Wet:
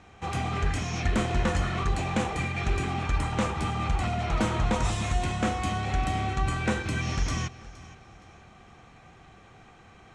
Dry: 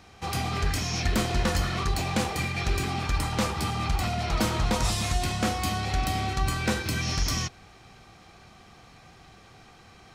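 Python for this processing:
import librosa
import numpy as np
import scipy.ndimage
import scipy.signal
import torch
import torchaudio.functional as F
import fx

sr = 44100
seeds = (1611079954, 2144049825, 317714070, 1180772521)

y = scipy.signal.sosfilt(scipy.signal.butter(4, 7900.0, 'lowpass', fs=sr, output='sos'), x)
y = fx.peak_eq(y, sr, hz=4800.0, db=-12.5, octaves=0.68)
y = fx.echo_feedback(y, sr, ms=468, feedback_pct=34, wet_db=-19)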